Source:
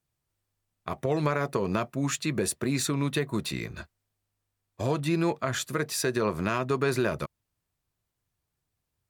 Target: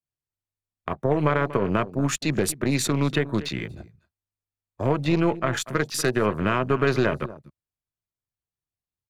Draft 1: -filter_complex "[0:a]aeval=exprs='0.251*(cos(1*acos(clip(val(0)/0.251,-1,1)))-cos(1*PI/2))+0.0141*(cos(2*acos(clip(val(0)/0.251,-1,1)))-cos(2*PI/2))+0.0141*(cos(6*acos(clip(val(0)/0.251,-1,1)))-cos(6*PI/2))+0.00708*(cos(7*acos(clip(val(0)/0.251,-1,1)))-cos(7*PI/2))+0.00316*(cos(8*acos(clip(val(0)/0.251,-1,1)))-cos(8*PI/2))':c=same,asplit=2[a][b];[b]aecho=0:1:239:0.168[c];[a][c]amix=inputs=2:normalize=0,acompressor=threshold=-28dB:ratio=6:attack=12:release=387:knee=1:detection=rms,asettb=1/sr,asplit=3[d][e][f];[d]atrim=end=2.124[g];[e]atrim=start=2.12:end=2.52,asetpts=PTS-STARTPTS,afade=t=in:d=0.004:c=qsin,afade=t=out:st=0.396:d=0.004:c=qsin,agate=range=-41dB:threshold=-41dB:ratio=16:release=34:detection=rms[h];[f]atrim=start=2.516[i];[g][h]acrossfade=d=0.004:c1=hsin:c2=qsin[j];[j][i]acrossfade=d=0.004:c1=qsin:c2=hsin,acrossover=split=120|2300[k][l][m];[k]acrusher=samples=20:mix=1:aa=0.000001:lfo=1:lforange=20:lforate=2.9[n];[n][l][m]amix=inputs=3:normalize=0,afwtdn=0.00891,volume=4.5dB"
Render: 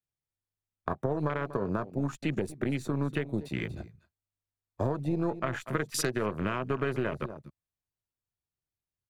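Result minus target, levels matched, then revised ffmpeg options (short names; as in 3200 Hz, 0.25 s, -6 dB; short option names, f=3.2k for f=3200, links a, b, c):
compressor: peak gain reduction +10 dB
-filter_complex "[0:a]aeval=exprs='0.251*(cos(1*acos(clip(val(0)/0.251,-1,1)))-cos(1*PI/2))+0.0141*(cos(2*acos(clip(val(0)/0.251,-1,1)))-cos(2*PI/2))+0.0141*(cos(6*acos(clip(val(0)/0.251,-1,1)))-cos(6*PI/2))+0.00708*(cos(7*acos(clip(val(0)/0.251,-1,1)))-cos(7*PI/2))+0.00316*(cos(8*acos(clip(val(0)/0.251,-1,1)))-cos(8*PI/2))':c=same,asplit=2[a][b];[b]aecho=0:1:239:0.168[c];[a][c]amix=inputs=2:normalize=0,asettb=1/sr,asplit=3[d][e][f];[d]atrim=end=2.124[g];[e]atrim=start=2.12:end=2.52,asetpts=PTS-STARTPTS,afade=t=in:d=0.004:c=qsin,afade=t=out:st=0.396:d=0.004:c=qsin,agate=range=-41dB:threshold=-41dB:ratio=16:release=34:detection=rms[h];[f]atrim=start=2.516[i];[g][h]acrossfade=d=0.004:c1=hsin:c2=qsin[j];[j][i]acrossfade=d=0.004:c1=qsin:c2=hsin,acrossover=split=120|2300[k][l][m];[k]acrusher=samples=20:mix=1:aa=0.000001:lfo=1:lforange=20:lforate=2.9[n];[n][l][m]amix=inputs=3:normalize=0,afwtdn=0.00891,volume=4.5dB"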